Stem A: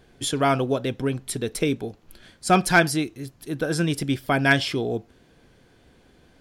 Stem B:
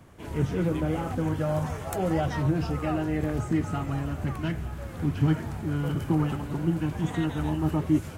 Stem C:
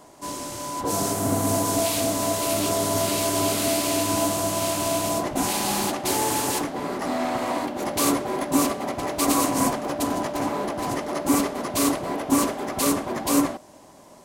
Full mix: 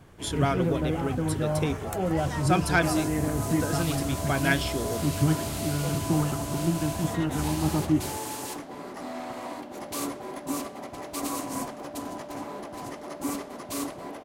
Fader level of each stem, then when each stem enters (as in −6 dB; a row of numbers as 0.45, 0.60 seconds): −6.5, −0.5, −10.5 decibels; 0.00, 0.00, 1.95 seconds